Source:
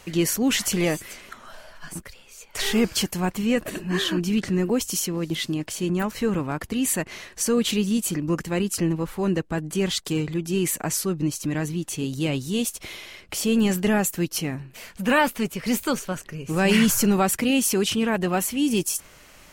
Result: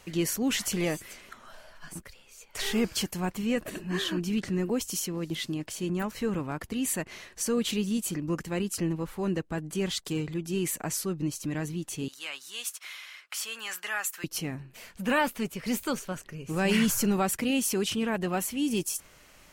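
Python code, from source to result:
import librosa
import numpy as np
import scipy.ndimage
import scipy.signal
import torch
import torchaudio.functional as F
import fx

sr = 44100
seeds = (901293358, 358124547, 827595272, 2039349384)

y = fx.highpass_res(x, sr, hz=1300.0, q=1.7, at=(12.08, 14.24))
y = y * 10.0 ** (-6.0 / 20.0)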